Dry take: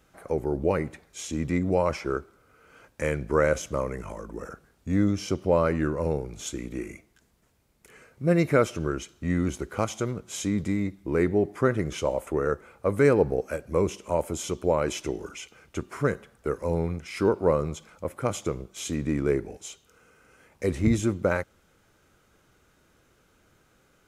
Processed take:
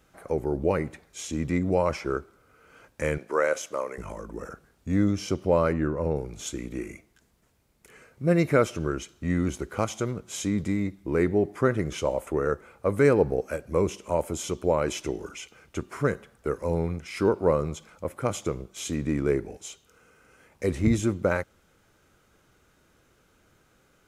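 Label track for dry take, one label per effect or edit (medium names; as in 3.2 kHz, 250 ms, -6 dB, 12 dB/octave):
3.180000	3.980000	high-pass 440 Hz
5.720000	6.150000	treble shelf 2.5 kHz -> 3.6 kHz -11 dB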